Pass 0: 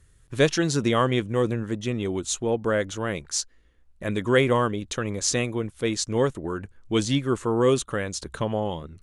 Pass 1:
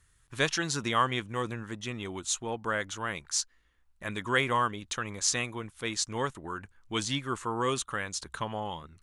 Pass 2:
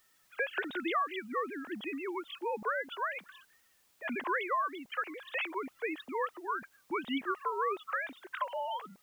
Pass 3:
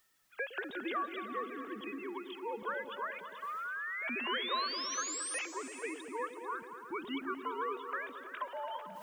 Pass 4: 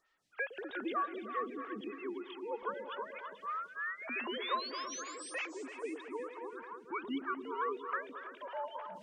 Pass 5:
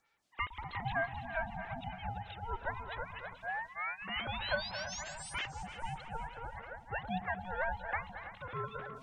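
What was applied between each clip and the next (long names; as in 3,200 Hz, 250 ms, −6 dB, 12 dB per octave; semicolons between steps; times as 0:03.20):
low shelf with overshoot 710 Hz −7.5 dB, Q 1.5; level −2.5 dB
three sine waves on the formant tracks; downward compressor, threshold −31 dBFS, peak gain reduction 12 dB; background noise white −71 dBFS; level +1.5 dB
reversed playback; upward compression, threshold −49 dBFS; reversed playback; sound drawn into the spectrogram rise, 0:03.42–0:05.39, 1,100–9,700 Hz −35 dBFS; echo whose low-pass opens from repeat to repeat 111 ms, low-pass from 400 Hz, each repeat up 2 octaves, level −6 dB; level −5 dB
high-frequency loss of the air 92 metres; phaser with staggered stages 3.2 Hz; level +3 dB
ring modulation 460 Hz; level +3.5 dB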